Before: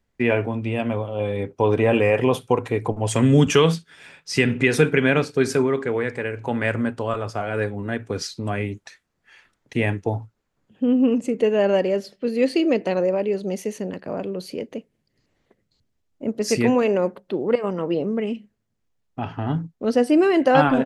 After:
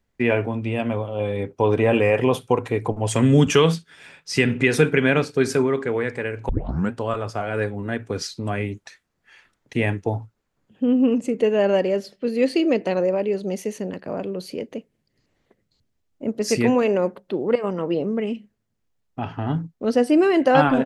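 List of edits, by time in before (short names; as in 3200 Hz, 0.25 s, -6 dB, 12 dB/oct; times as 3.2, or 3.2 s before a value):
6.49 tape start 0.42 s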